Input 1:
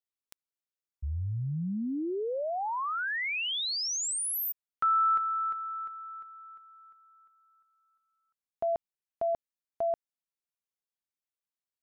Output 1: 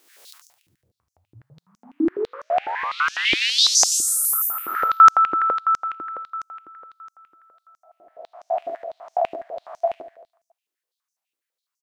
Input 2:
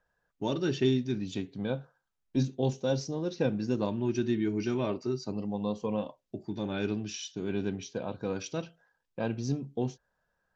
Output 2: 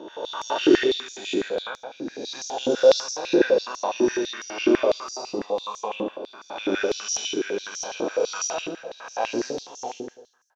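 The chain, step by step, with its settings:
peak hold with a rise ahead of every peak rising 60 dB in 1.31 s
repeating echo 72 ms, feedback 57%, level −4 dB
high-pass on a step sequencer 12 Hz 330–6,000 Hz
level +1.5 dB

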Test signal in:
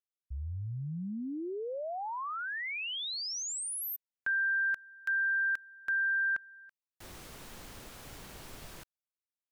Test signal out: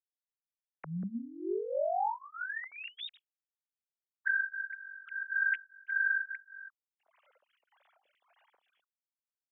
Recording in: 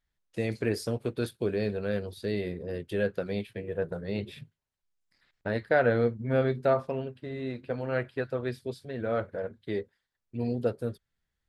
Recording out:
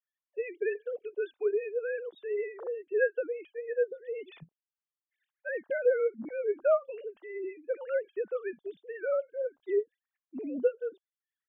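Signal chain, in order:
three sine waves on the formant tracks
phaser with staggered stages 1.7 Hz
level +1 dB

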